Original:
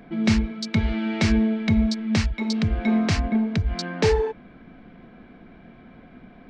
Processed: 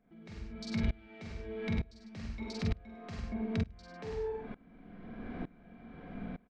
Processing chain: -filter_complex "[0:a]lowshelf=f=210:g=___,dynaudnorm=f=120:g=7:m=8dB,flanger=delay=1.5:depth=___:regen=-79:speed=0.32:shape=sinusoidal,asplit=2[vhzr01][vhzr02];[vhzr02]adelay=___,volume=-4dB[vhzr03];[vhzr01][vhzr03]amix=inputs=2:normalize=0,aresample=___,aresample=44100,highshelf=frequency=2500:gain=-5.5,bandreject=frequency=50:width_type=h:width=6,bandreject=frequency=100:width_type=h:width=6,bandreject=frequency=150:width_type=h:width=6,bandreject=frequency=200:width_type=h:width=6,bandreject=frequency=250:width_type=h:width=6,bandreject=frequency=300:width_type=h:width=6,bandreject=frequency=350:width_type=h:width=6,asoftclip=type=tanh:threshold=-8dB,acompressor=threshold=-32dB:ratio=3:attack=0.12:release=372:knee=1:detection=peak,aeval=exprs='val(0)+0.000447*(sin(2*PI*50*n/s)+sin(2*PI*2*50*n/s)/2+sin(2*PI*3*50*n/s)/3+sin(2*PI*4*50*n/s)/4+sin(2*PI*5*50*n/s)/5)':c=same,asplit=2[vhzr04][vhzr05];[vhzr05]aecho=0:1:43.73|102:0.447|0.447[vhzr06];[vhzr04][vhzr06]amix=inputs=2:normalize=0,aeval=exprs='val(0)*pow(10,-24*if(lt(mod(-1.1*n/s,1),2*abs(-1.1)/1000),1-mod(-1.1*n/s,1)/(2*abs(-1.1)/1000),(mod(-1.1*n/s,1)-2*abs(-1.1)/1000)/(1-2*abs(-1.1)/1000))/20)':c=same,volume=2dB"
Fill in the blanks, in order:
3, 9.3, 48, 22050